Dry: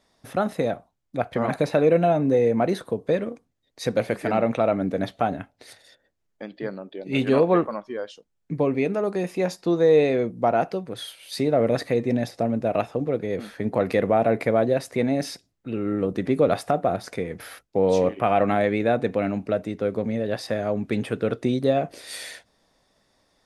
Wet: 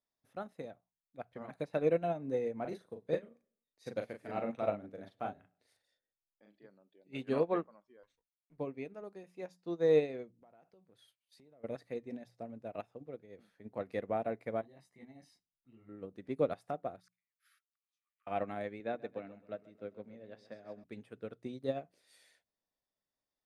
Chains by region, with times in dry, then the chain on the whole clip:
0:02.61–0:06.66: double-tracking delay 39 ms −3 dB + repeating echo 102 ms, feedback 44%, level −24 dB
0:08.03–0:08.58: lower of the sound and its delayed copy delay 0.49 ms + low-pass filter 1,500 Hz 6 dB per octave + tilt shelving filter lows −6.5 dB, about 1,100 Hz
0:10.40–0:11.64: downward expander −37 dBFS + downward compressor 8 to 1, threshold −29 dBFS
0:14.61–0:15.89: comb filter 1 ms, depth 62% + micro pitch shift up and down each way 26 cents
0:17.00–0:18.27: gate with flip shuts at −23 dBFS, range −26 dB + linear-phase brick-wall high-pass 1,100 Hz
0:18.80–0:20.84: band-pass filter 120–5,900 Hz + repeating echo 132 ms, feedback 51%, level −10.5 dB
whole clip: mains-hum notches 60/120/180 Hz; expander for the loud parts 2.5 to 1, over −28 dBFS; level −8.5 dB

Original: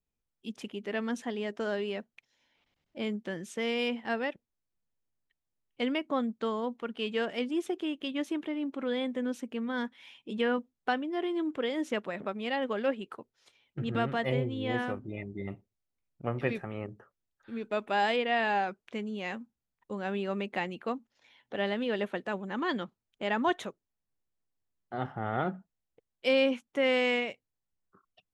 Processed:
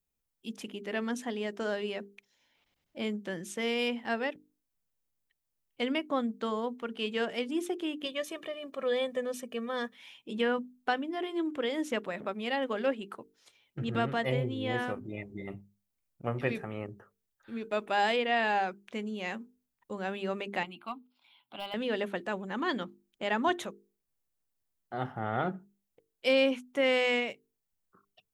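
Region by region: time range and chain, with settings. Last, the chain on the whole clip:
0:08.05–0:09.95: high-pass filter 85 Hz + comb filter 1.7 ms, depth 80%
0:20.63–0:21.74: high-pass filter 320 Hz 6 dB per octave + hard clipping −24 dBFS + phaser with its sweep stopped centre 1,800 Hz, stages 6
whole clip: high-shelf EQ 8,500 Hz +10 dB; mains-hum notches 50/100/150/200/250/300/350/400/450 Hz

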